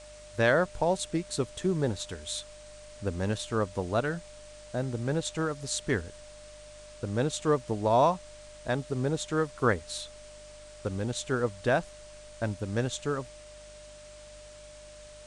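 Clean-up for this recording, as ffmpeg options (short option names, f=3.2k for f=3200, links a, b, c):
-af "bandreject=f=50.3:t=h:w=4,bandreject=f=100.6:t=h:w=4,bandreject=f=150.9:t=h:w=4,bandreject=f=201.2:t=h:w=4,bandreject=f=251.5:t=h:w=4,bandreject=f=301.8:t=h:w=4,bandreject=f=600:w=30,afwtdn=0.0028"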